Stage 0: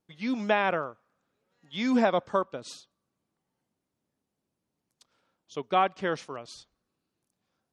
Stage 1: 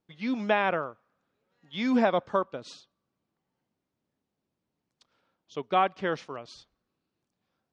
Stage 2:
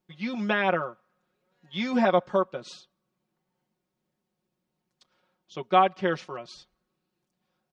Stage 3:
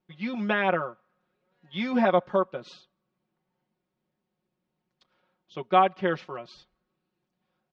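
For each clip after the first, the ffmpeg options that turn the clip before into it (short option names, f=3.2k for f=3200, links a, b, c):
-af "lowpass=5k"
-af "aecho=1:1:5.5:0.8"
-af "lowpass=3.8k"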